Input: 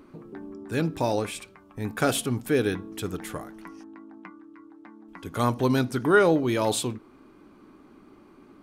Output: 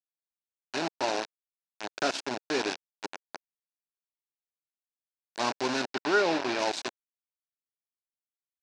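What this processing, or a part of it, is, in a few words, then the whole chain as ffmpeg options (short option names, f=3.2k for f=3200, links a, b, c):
hand-held game console: -filter_complex "[0:a]acrusher=bits=3:mix=0:aa=0.000001,highpass=440,equalizer=f=490:t=q:w=4:g=-9,equalizer=f=1.2k:t=q:w=4:g=-9,equalizer=f=2k:t=q:w=4:g=-7,equalizer=f=3.2k:t=q:w=4:g=-7,lowpass=f=5.7k:w=0.5412,lowpass=f=5.7k:w=1.3066,asettb=1/sr,asplit=3[a][b][c];[a]atrim=end=5.904[d];[b]atrim=start=5.9:end=6.59,asetpts=PTS-STARTPTS,afade=t=in:d=0.004:c=qsin,afade=t=out:st=0.686:d=0.004:c=qsin,acrossover=split=5000[e][f];[f]acompressor=threshold=-49dB:ratio=4:attack=1:release=60[g];[e][g]amix=inputs=2:normalize=0[h];[c]atrim=start=6.586[i];[d][h]acrossfade=d=0.004:c1=hsin:c2=qsin[j];[j][i]acrossfade=d=0.004:c1=qsin:c2=hsin"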